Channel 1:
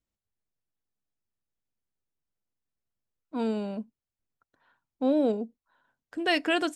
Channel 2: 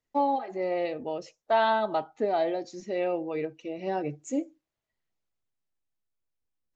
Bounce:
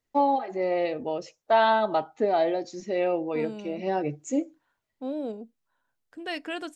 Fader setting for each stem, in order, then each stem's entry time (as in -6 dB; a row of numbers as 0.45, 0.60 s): -8.0, +3.0 dB; 0.00, 0.00 s